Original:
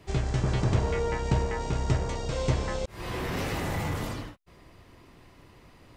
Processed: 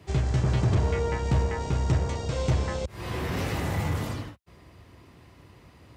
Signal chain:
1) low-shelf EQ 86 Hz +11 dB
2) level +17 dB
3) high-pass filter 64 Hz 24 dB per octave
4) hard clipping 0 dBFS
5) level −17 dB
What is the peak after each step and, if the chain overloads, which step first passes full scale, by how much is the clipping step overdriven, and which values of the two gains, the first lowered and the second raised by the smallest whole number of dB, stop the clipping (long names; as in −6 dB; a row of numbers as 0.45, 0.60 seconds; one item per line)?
−7.5, +9.5, +8.5, 0.0, −17.0 dBFS
step 2, 8.5 dB
step 2 +8 dB, step 5 −8 dB